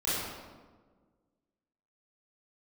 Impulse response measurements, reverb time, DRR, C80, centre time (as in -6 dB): 1.5 s, -11.5 dB, 0.0 dB, 110 ms